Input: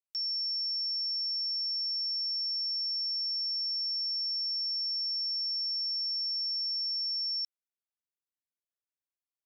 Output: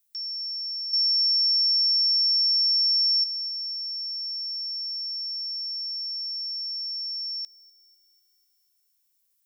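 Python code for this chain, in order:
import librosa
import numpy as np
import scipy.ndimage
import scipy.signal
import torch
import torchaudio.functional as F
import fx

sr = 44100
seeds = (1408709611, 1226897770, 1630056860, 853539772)

y = fx.dmg_noise_colour(x, sr, seeds[0], colour='violet', level_db=-71.0)
y = fx.peak_eq(y, sr, hz=5100.0, db=12.0, octaves=0.5, at=(0.93, 3.24))
y = fx.echo_wet_highpass(y, sr, ms=248, feedback_pct=54, hz=5100.0, wet_db=-20.5)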